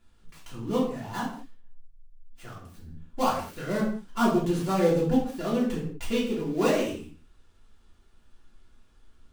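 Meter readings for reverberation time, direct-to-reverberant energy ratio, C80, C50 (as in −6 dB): non-exponential decay, −7.5 dB, 8.5 dB, 5.0 dB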